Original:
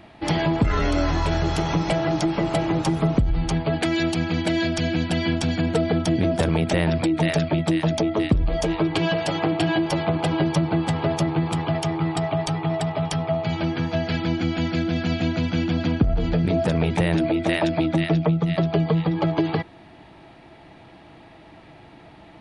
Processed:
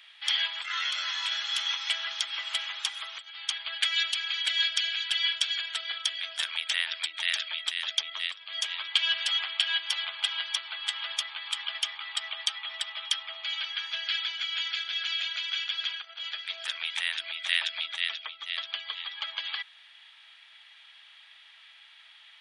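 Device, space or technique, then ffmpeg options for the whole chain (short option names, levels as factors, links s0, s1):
headphones lying on a table: -af "highpass=f=1500:w=0.5412,highpass=f=1500:w=1.3066,equalizer=f=3300:t=o:w=0.36:g=12,volume=0.841"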